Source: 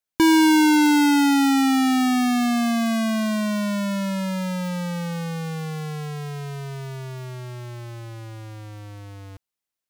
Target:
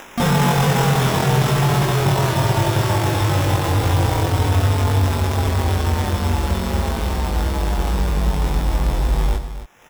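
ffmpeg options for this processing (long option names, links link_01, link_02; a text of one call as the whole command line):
ffmpeg -i in.wav -filter_complex "[0:a]asplit=3[link_01][link_02][link_03];[link_02]asetrate=37084,aresample=44100,atempo=1.18921,volume=0dB[link_04];[link_03]asetrate=58866,aresample=44100,atempo=0.749154,volume=-12dB[link_05];[link_01][link_04][link_05]amix=inputs=3:normalize=0,asplit=2[link_06][link_07];[link_07]acompressor=mode=upward:threshold=-18dB:ratio=2.5,volume=0dB[link_08];[link_06][link_08]amix=inputs=2:normalize=0,equalizer=frequency=500:width_type=o:width=0.33:gain=-8,equalizer=frequency=1600:width_type=o:width=0.33:gain=7,equalizer=frequency=8000:width_type=o:width=0.33:gain=-11,asetrate=24046,aresample=44100,atempo=1.83401,acrusher=samples=10:mix=1:aa=0.000001,asoftclip=type=hard:threshold=-24dB,asplit=2[link_09][link_10];[link_10]adelay=21,volume=-3dB[link_11];[link_09][link_11]amix=inputs=2:normalize=0,asplit=2[link_12][link_13];[link_13]aecho=0:1:91|269:0.237|0.266[link_14];[link_12][link_14]amix=inputs=2:normalize=0,volume=6dB" out.wav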